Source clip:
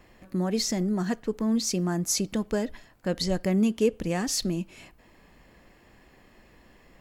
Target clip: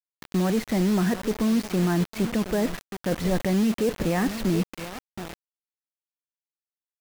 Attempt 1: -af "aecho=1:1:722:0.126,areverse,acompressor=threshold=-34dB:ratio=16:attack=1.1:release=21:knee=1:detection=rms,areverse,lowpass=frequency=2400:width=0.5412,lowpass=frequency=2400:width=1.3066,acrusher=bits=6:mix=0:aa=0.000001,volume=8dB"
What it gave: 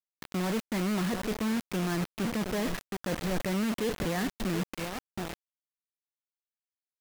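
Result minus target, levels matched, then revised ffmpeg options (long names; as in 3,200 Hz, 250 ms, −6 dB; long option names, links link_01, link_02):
downward compressor: peak gain reduction +7.5 dB
-af "aecho=1:1:722:0.126,areverse,acompressor=threshold=-26dB:ratio=16:attack=1.1:release=21:knee=1:detection=rms,areverse,lowpass=frequency=2400:width=0.5412,lowpass=frequency=2400:width=1.3066,acrusher=bits=6:mix=0:aa=0.000001,volume=8dB"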